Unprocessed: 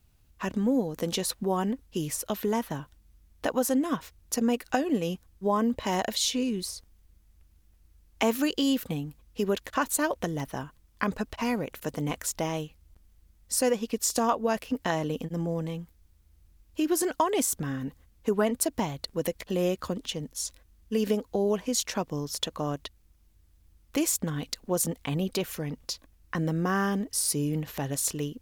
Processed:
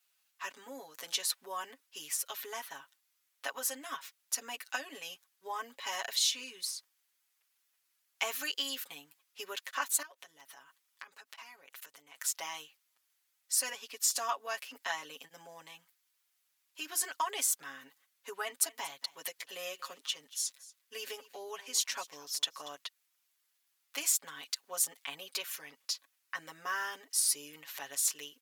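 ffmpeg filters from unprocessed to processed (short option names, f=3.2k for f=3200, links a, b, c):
-filter_complex "[0:a]asettb=1/sr,asplit=3[a][b][c];[a]atrim=end=10.024[d];[b]atrim=start=10.02:end=12.15,asetpts=PTS-STARTPTS,afade=t=in:d=0.004:c=qsin,afade=t=out:st=2.126:d=0.004:c=qsin,acompressor=threshold=-40dB:ratio=8:attack=3.2:release=140:knee=1:detection=peak[e];[c]atrim=start=12.146[f];[d][e]acrossfade=d=0.004:c1=hsin:c2=qsin[g];[g][f]acrossfade=d=0.004:c1=qsin:c2=hsin,asettb=1/sr,asplit=3[h][i][j];[h]atrim=end=18.394[k];[i]atrim=start=18.39:end=22.77,asetpts=PTS-STARTPTS,afade=t=in:d=0.004:c=qsin,afade=t=out:st=4.376:d=0.004:c=qsin,aecho=1:1:234:0.112,atrim=end_sample=193158[l];[j]atrim=start=22.766[m];[k][l]acrossfade=d=0.004:c1=hsin:c2=qsin[n];[n][m]acrossfade=d=0.004:c1=qsin:c2=hsin,highpass=1.3k,aecho=1:1:7.2:0.96,volume=-4dB"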